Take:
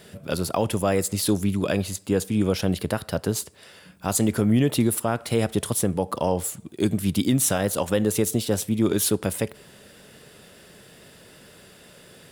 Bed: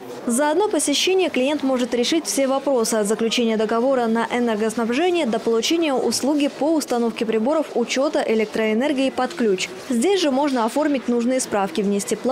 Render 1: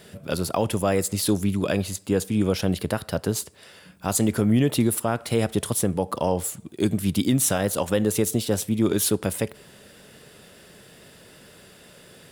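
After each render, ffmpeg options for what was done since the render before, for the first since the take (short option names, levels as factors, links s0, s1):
-af anull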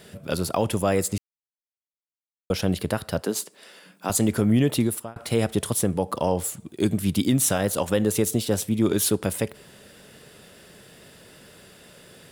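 -filter_complex "[0:a]asettb=1/sr,asplit=3[s0][s1][s2];[s0]atrim=end=3.224[s3];[s1]atrim=start=3.22:end=4.1,asetpts=PTS-STARTPTS,afade=t=in:d=0.004:c=qsin,afade=t=out:st=0.876:d=0.004:c=qsin,highpass=f=200:w=0.5412,highpass=f=200:w=1.3066[s4];[s2]atrim=start=4.096[s5];[s3][s4]acrossfade=d=0.004:c1=hsin:c2=qsin[s6];[s6][s5]acrossfade=d=0.004:c1=qsin:c2=hsin,asplit=4[s7][s8][s9][s10];[s7]atrim=end=1.18,asetpts=PTS-STARTPTS,afade=t=out:st=1.176:d=0.004:c=hsin[s11];[s8]atrim=start=1.18:end=2.5,asetpts=PTS-STARTPTS,volume=0[s12];[s9]atrim=start=2.5:end=5.16,asetpts=PTS-STARTPTS,afade=t=in:d=0.004:c=hsin,afade=t=out:st=2.14:d=0.52:c=qsin[s13];[s10]atrim=start=5.16,asetpts=PTS-STARTPTS,afade=t=in:d=0.004:c=hsin[s14];[s11][s12][s13][s14]concat=n=4:v=0:a=1"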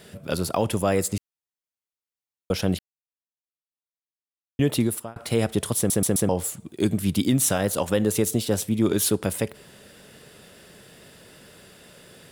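-filter_complex "[0:a]asplit=7[s0][s1][s2][s3][s4][s5][s6];[s0]atrim=end=2.79,asetpts=PTS-STARTPTS,afade=t=out:st=2.786:d=0.004:c=hsin[s7];[s1]atrim=start=2.79:end=4.59,asetpts=PTS-STARTPTS,volume=0[s8];[s2]atrim=start=4.59:end=5.902,asetpts=PTS-STARTPTS,afade=t=in:d=0.004:c=hsin[s9];[s3]atrim=start=5.768:end=5.902[s10];[s4]atrim=start=5.768:end=5.902[s11];[s5]atrim=start=5.768:end=5.902[s12];[s6]atrim=start=6.288[s13];[s7][s8][s9]concat=n=3:v=0:a=1[s14];[s14][s10]acrossfade=d=0.004:c1=hsin:c2=hsin[s15];[s15][s11]acrossfade=d=0.004:c1=hsin:c2=hsin[s16];[s16][s12]acrossfade=d=0.004:c1=hsin:c2=hsin[s17];[s17][s13]acrossfade=d=0.004:c1=hsin:c2=hsin"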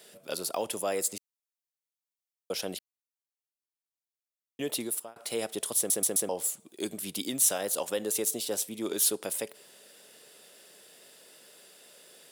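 -af "highpass=550,equalizer=f=1400:t=o:w=2.5:g=-9"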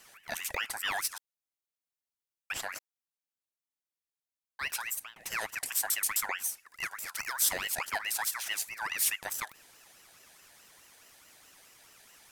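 -af "aeval=exprs='val(0)*sin(2*PI*1800*n/s+1800*0.35/4.7*sin(2*PI*4.7*n/s))':c=same"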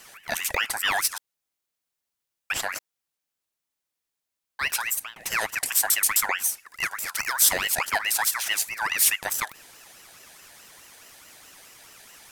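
-af "volume=2.66"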